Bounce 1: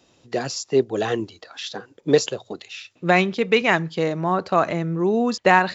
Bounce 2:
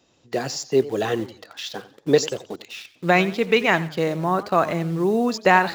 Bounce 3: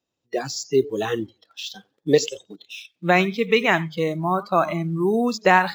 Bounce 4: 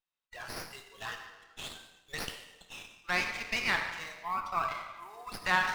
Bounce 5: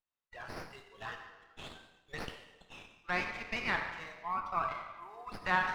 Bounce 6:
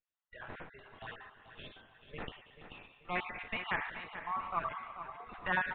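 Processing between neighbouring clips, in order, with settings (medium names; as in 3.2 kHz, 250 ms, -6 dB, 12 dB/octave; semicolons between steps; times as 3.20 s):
in parallel at -7 dB: bit crusher 6-bit; on the sum: modulated delay 89 ms, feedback 36%, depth 156 cents, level -17 dB; trim -3.5 dB
spectral noise reduction 20 dB
high-pass 1 kHz 24 dB/octave; on a send at -2.5 dB: reverberation RT60 1.3 s, pre-delay 5 ms; on the sum: sliding maximum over 5 samples; trim -8 dB
low-pass 1.6 kHz 6 dB/octave
random holes in the spectrogram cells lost 26%; resampled via 8 kHz; feedback delay 436 ms, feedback 41%, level -11 dB; trim -1 dB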